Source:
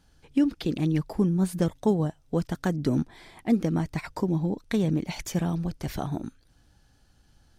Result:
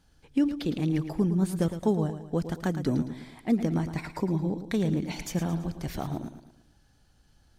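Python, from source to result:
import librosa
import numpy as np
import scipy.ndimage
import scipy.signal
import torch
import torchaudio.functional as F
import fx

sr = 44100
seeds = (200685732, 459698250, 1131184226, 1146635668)

y = fx.echo_feedback(x, sr, ms=111, feedback_pct=44, wet_db=-10.5)
y = F.gain(torch.from_numpy(y), -2.0).numpy()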